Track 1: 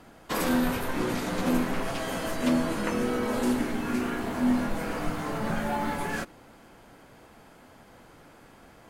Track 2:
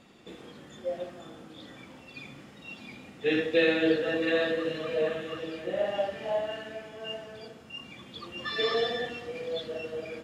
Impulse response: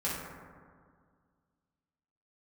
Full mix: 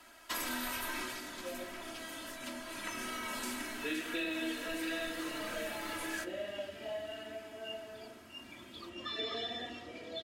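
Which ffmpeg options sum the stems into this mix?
-filter_complex "[0:a]tiltshelf=f=860:g=-9.5,volume=-2dB,afade=t=out:st=0.96:d=0.24:silence=0.298538,afade=t=in:st=2.63:d=0.41:silence=0.446684,asplit=2[a][b];[b]volume=-17.5dB[c];[1:a]adelay=600,volume=-6dB[d];[2:a]atrim=start_sample=2205[e];[c][e]afir=irnorm=-1:irlink=0[f];[a][d][f]amix=inputs=3:normalize=0,aecho=1:1:3.1:0.75,acrossover=split=270|1500[g][h][i];[g]acompressor=threshold=-45dB:ratio=4[j];[h]acompressor=threshold=-42dB:ratio=4[k];[i]acompressor=threshold=-38dB:ratio=4[l];[j][k][l]amix=inputs=3:normalize=0"

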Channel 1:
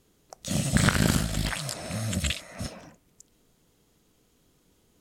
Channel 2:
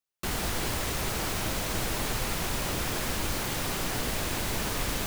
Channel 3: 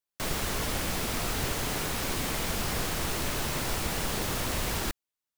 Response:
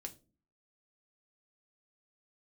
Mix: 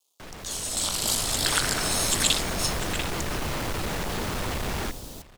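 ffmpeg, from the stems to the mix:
-filter_complex "[0:a]acontrast=36,acrusher=bits=9:dc=4:mix=0:aa=0.000001,highpass=f=1.3k:t=q:w=1.6,volume=-3dB,asplit=2[a][b];[b]volume=-18.5dB[c];[1:a]adelay=150,volume=-19.5dB[d];[2:a]lowpass=f=2.7k:p=1,asoftclip=type=hard:threshold=-34.5dB,volume=-5dB,asplit=2[e][f];[f]volume=-19dB[g];[a][d]amix=inputs=2:normalize=0,asuperstop=centerf=1700:order=4:qfactor=0.63,alimiter=limit=-19.5dB:level=0:latency=1:release=160,volume=0dB[h];[c][g]amix=inputs=2:normalize=0,aecho=0:1:692:1[i];[e][h][i]amix=inputs=3:normalize=0,dynaudnorm=f=330:g=7:m=12dB"

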